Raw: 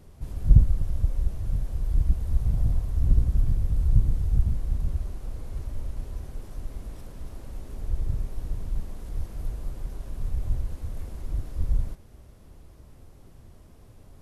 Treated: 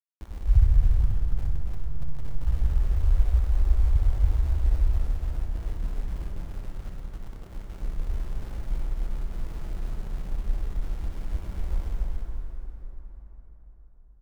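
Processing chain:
expanding power law on the bin magnitudes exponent 3.6
0:01.04–0:02.42: phases set to zero 146 Hz
0:05.30–0:06.46: noise gate with hold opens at −27 dBFS
shaped tremolo triangle 6.9 Hz, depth 65%
centre clipping without the shift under −38 dBFS
loudspeakers that aren't time-aligned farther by 21 metres −8 dB, 97 metres −4 dB
dense smooth reverb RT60 4.5 s, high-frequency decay 0.55×, DRR 0 dB

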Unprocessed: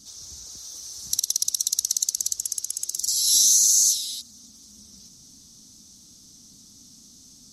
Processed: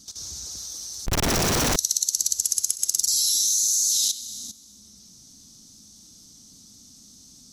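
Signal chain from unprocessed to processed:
four-comb reverb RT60 1.8 s, combs from 33 ms, DRR 7.5 dB
0:01.06–0:01.76: comparator with hysteresis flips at −28.5 dBFS
output level in coarse steps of 14 dB
level +6 dB

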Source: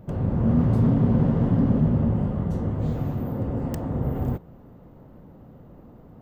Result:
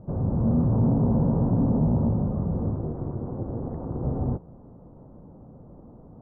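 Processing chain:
soft clipping −14.5 dBFS, distortion −17 dB
low-pass filter 1,100 Hz 24 dB per octave
0:00.71–0:02.09: hum with harmonics 60 Hz, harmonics 16, −37 dBFS −2 dB per octave
0:02.76–0:04.03: amplitude modulation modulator 230 Hz, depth 80%

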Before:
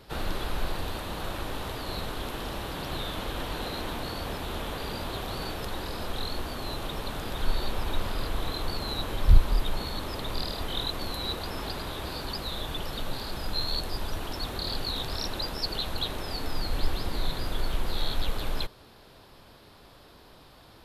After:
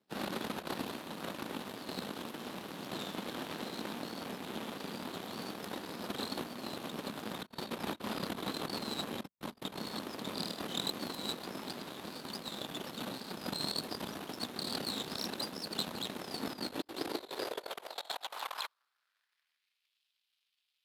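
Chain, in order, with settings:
power curve on the samples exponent 2
compressor whose output falls as the input rises −47 dBFS, ratio −0.5
high-pass filter sweep 210 Hz → 2,800 Hz, 0:16.47–0:19.93
level +7 dB

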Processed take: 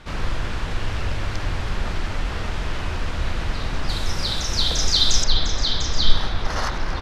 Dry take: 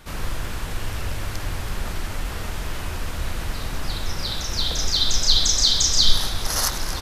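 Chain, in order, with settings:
low-pass filter 4,800 Hz 12 dB per octave, from 0:03.89 8,700 Hz, from 0:05.24 2,600 Hz
level +3 dB

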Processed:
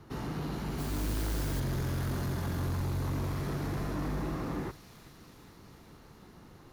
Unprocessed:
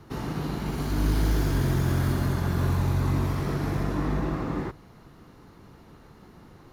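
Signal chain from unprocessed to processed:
soft clipping −25 dBFS, distortion −11 dB
delay with a high-pass on its return 406 ms, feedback 71%, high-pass 3,800 Hz, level −4 dB
0:00.78–0:01.60: noise that follows the level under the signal 14 dB
level −3.5 dB

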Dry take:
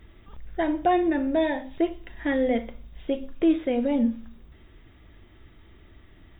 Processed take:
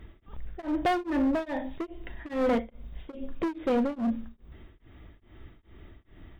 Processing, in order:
high-shelf EQ 2,100 Hz −6 dB
hard clipping −24.5 dBFS, distortion −8 dB
tremolo along a rectified sine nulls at 2.4 Hz
level +3.5 dB

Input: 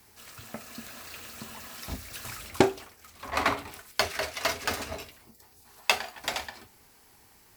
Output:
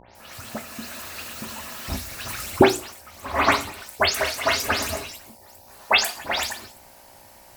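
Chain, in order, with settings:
every frequency bin delayed by itself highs late, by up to 152 ms
hum with harmonics 60 Hz, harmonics 16, −57 dBFS −2 dB per octave
mains-hum notches 60/120/180/240/300/360/420/480 Hz
level +8 dB

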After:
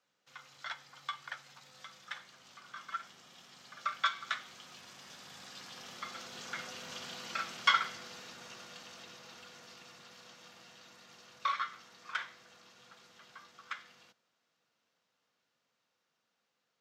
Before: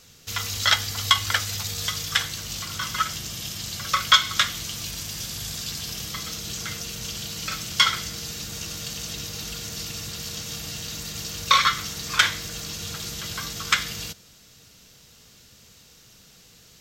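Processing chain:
source passing by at 0:07.06, 7 m/s, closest 7 metres
resonant band-pass 1,000 Hz, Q 0.98
frequency shifter +38 Hz

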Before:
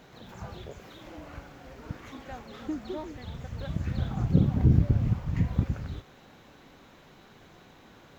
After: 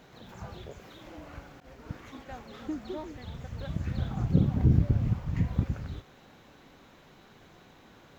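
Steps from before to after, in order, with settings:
0:01.60–0:02.41: downward expander −43 dBFS
level −1.5 dB

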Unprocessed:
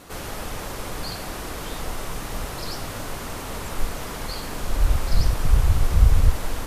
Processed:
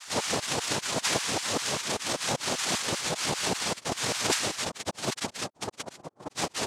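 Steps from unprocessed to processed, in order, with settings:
gate on every frequency bin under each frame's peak −30 dB strong
comb filter 5.9 ms, depth 65%
auto-filter high-pass saw down 5.1 Hz 400–5,300 Hz
cochlear-implant simulation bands 2
highs frequency-modulated by the lows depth 0.19 ms
level +3.5 dB

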